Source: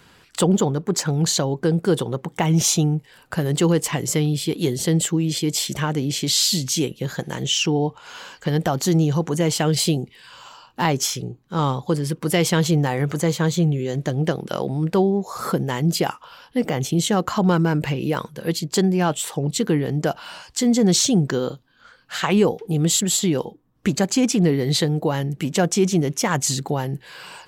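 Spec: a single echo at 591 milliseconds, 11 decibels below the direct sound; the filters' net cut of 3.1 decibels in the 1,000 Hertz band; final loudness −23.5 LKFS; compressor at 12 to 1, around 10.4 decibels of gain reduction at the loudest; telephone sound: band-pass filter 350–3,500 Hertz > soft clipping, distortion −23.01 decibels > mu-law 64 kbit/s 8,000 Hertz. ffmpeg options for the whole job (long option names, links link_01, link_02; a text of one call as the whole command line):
ffmpeg -i in.wav -af "equalizer=frequency=1000:width_type=o:gain=-4,acompressor=threshold=-24dB:ratio=12,highpass=350,lowpass=3500,aecho=1:1:591:0.282,asoftclip=threshold=-19dB,volume=12dB" -ar 8000 -c:a pcm_mulaw out.wav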